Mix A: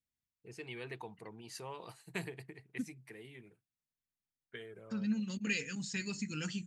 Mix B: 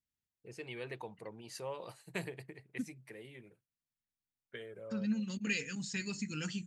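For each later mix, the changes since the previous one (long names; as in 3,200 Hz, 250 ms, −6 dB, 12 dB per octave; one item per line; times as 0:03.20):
first voice: add parametric band 550 Hz +11.5 dB 0.22 octaves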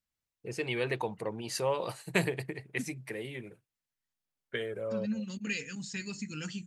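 first voice +11.5 dB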